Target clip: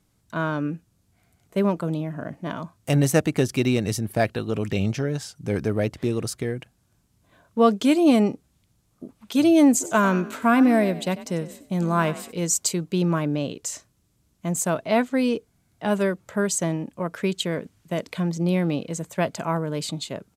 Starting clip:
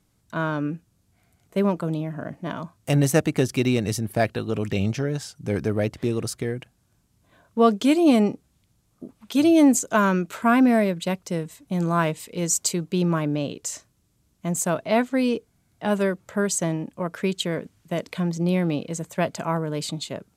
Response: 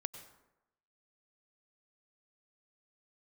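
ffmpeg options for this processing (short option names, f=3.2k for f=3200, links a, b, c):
-filter_complex "[0:a]asplit=3[a][b][c];[a]afade=t=out:st=9.8:d=0.02[d];[b]asplit=4[e][f][g][h];[f]adelay=95,afreqshift=37,volume=-15dB[i];[g]adelay=190,afreqshift=74,volume=-23.9dB[j];[h]adelay=285,afreqshift=111,volume=-32.7dB[k];[e][i][j][k]amix=inputs=4:normalize=0,afade=t=in:st=9.8:d=0.02,afade=t=out:st=12.31:d=0.02[l];[c]afade=t=in:st=12.31:d=0.02[m];[d][l][m]amix=inputs=3:normalize=0"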